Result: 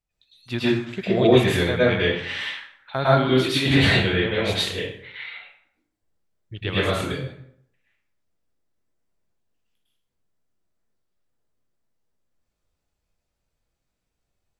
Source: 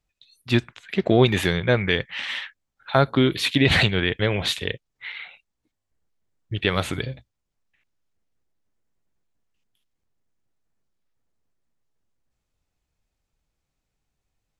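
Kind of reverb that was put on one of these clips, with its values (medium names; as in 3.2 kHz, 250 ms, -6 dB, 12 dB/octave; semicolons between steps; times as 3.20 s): plate-style reverb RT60 0.67 s, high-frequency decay 0.7×, pre-delay 95 ms, DRR -9 dB; trim -8.5 dB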